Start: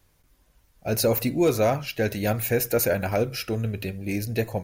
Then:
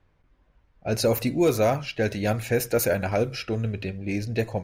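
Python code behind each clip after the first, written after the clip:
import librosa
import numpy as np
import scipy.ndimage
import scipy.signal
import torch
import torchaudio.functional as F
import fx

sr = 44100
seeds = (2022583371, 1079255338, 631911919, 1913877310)

y = fx.env_lowpass(x, sr, base_hz=2200.0, full_db=-17.5)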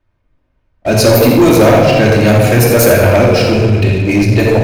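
y = x + 10.0 ** (-10.5 / 20.0) * np.pad(x, (int(84 * sr / 1000.0), 0))[:len(x)]
y = fx.room_shoebox(y, sr, seeds[0], volume_m3=1800.0, walls='mixed', distance_m=2.7)
y = fx.leveller(y, sr, passes=3)
y = y * librosa.db_to_amplitude(2.0)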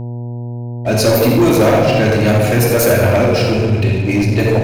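y = fx.dmg_buzz(x, sr, base_hz=120.0, harmonics=8, level_db=-20.0, tilt_db=-9, odd_only=False)
y = y * librosa.db_to_amplitude(-4.0)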